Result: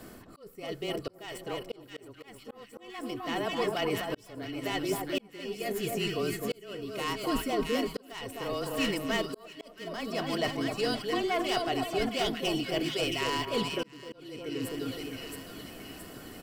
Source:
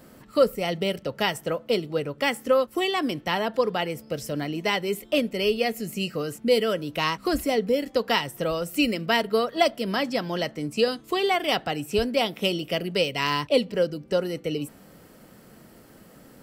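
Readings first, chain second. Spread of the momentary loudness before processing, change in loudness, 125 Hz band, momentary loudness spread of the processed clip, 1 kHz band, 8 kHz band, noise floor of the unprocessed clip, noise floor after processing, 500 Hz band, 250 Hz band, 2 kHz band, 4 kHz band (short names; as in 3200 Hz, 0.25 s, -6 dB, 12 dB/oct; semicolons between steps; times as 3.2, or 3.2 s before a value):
7 LU, -7.0 dB, -6.0 dB, 15 LU, -7.0 dB, -2.5 dB, -51 dBFS, -55 dBFS, -9.0 dB, -5.5 dB, -7.0 dB, -6.0 dB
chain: tracing distortion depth 0.056 ms; comb 2.7 ms, depth 41%; reverse; compressor 4:1, threshold -33 dBFS, peak gain reduction 17 dB; reverse; frequency shift -22 Hz; on a send: split-band echo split 1300 Hz, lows 0.258 s, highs 0.671 s, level -4 dB; on the sum: auto swell 0.753 s; gain +3 dB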